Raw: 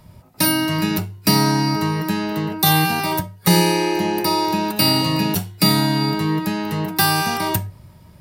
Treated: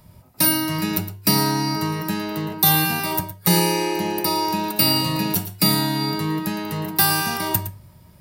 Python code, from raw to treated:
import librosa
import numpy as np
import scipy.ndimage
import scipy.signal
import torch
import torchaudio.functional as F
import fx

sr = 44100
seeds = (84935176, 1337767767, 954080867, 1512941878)

p1 = fx.high_shelf(x, sr, hz=9800.0, db=9.0)
p2 = p1 + fx.echo_single(p1, sr, ms=112, db=-13.0, dry=0)
y = F.gain(torch.from_numpy(p2), -3.5).numpy()